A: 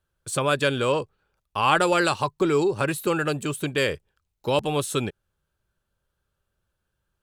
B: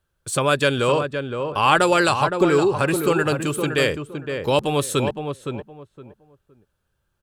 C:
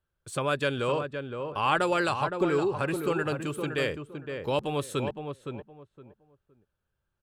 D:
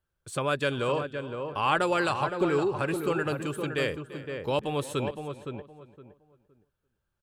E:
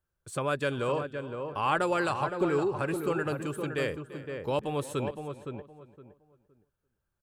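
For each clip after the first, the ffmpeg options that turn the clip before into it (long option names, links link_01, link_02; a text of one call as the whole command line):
ffmpeg -i in.wav -filter_complex "[0:a]asplit=2[link_01][link_02];[link_02]adelay=515,lowpass=frequency=1500:poles=1,volume=-6dB,asplit=2[link_03][link_04];[link_04]adelay=515,lowpass=frequency=1500:poles=1,volume=0.23,asplit=2[link_05][link_06];[link_06]adelay=515,lowpass=frequency=1500:poles=1,volume=0.23[link_07];[link_01][link_03][link_05][link_07]amix=inputs=4:normalize=0,volume=3.5dB" out.wav
ffmpeg -i in.wav -af "bass=frequency=250:gain=0,treble=frequency=4000:gain=-6,volume=-8.5dB" out.wav
ffmpeg -i in.wav -af "aecho=1:1:342:0.133" out.wav
ffmpeg -i in.wav -af "equalizer=frequency=3400:width_type=o:width=1.2:gain=-4.5,volume=-1.5dB" out.wav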